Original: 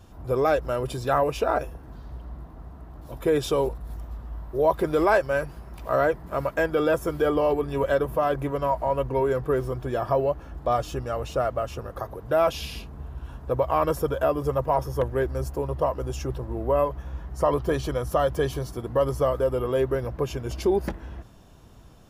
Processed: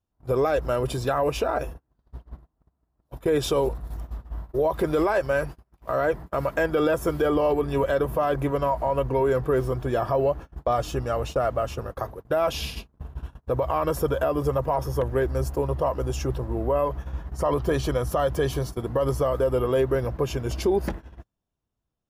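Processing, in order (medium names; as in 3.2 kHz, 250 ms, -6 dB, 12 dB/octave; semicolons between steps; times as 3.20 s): gate -35 dBFS, range -36 dB; peak limiter -17.5 dBFS, peak gain reduction 10 dB; trim +3 dB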